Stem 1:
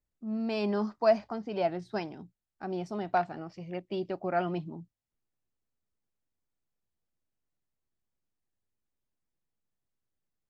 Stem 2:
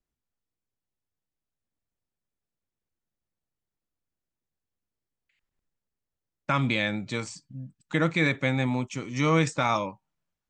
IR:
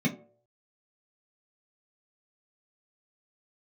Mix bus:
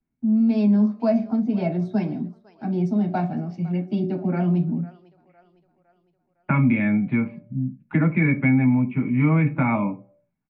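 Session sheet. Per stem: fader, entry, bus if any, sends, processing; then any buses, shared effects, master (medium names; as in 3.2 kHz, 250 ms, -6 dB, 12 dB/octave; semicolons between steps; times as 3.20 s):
-1.0 dB, 0.00 s, send -4.5 dB, echo send -19.5 dB, gate with hold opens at -54 dBFS
+3.0 dB, 0.00 s, send -11 dB, no echo send, elliptic low-pass 2.4 kHz, stop band 60 dB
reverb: on, RT60 0.55 s, pre-delay 3 ms
echo: feedback delay 508 ms, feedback 46%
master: compression 2:1, threshold -19 dBFS, peak gain reduction 6 dB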